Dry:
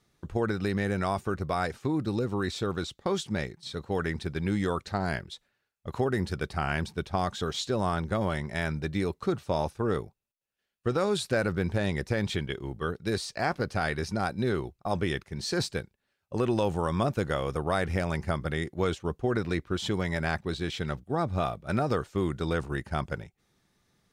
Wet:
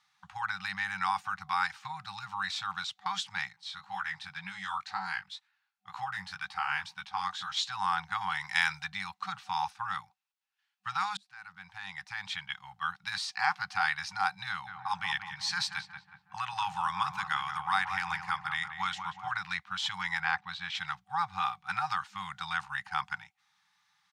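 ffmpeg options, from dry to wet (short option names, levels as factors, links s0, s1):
-filter_complex "[0:a]asettb=1/sr,asplit=3[s0][s1][s2];[s0]atrim=end=3.534[s3];[s1]atrim=start=3.53:end=7.57,asetpts=PTS-STARTPTS,afade=t=in:d=0.004:c=qsin,afade=t=out:st=4.036:d=0.004:c=qsin,flanger=delay=15:depth=6.2:speed=2[s4];[s2]atrim=start=7.566[s5];[s3][s4]acrossfade=d=0.004:c1=hsin:c2=qsin[s6];[s6][s5]acrossfade=d=0.004:c1=qsin:c2=hsin,asettb=1/sr,asplit=3[s7][s8][s9];[s7]atrim=end=8.404[s10];[s8]atrim=start=8.4:end=8.84,asetpts=PTS-STARTPTS,afade=t=in:d=0.004:c=qsin,afade=t=out:st=0.436:d=0.004:c=qsin,highshelf=f=2400:g=10[s11];[s9]atrim=start=8.836[s12];[s10][s11]acrossfade=d=0.004:c1=hsin:c2=qsin[s13];[s13][s12]acrossfade=d=0.004:c1=qsin:c2=hsin,asplit=3[s14][s15][s16];[s14]afade=t=out:st=14.66:d=0.02[s17];[s15]asplit=2[s18][s19];[s19]adelay=183,lowpass=f=1500:p=1,volume=0.501,asplit=2[s20][s21];[s21]adelay=183,lowpass=f=1500:p=1,volume=0.55,asplit=2[s22][s23];[s23]adelay=183,lowpass=f=1500:p=1,volume=0.55,asplit=2[s24][s25];[s25]adelay=183,lowpass=f=1500:p=1,volume=0.55,asplit=2[s26][s27];[s27]adelay=183,lowpass=f=1500:p=1,volume=0.55,asplit=2[s28][s29];[s29]adelay=183,lowpass=f=1500:p=1,volume=0.55,asplit=2[s30][s31];[s31]adelay=183,lowpass=f=1500:p=1,volume=0.55[s32];[s18][s20][s22][s24][s26][s28][s30][s32]amix=inputs=8:normalize=0,afade=t=in:st=14.66:d=0.02,afade=t=out:st=19.35:d=0.02[s33];[s16]afade=t=in:st=19.35:d=0.02[s34];[s17][s33][s34]amix=inputs=3:normalize=0,asettb=1/sr,asplit=3[s35][s36][s37];[s35]atrim=end=20.204[s38];[s36]atrim=start=20.2:end=20.75,asetpts=PTS-STARTPTS,afade=t=in:d=0.004:c=qsin,afade=t=out:st=0.546:d=0.004:c=qsin,aemphasis=mode=reproduction:type=50fm[s39];[s37]atrim=start=20.746[s40];[s38][s39]acrossfade=d=0.004:c1=hsin:c2=qsin[s41];[s41][s40]acrossfade=d=0.004:c1=qsin:c2=hsin,asplit=2[s42][s43];[s42]atrim=end=11.17,asetpts=PTS-STARTPTS,afade=t=out:st=11.166:d=0.004:c=hsin[s44];[s43]atrim=start=11.17,asetpts=PTS-STARTPTS,afade=t=in:d=1.79[s45];[s44][s45]concat=n=2:v=0:a=1,highpass=96,afftfilt=real='re*(1-between(b*sr/4096,200,750))':imag='im*(1-between(b*sr/4096,200,750))':win_size=4096:overlap=0.75,acrossover=split=400 6100:gain=0.0708 1 0.224[s46][s47][s48];[s46][s47][s48]amix=inputs=3:normalize=0,volume=1.5"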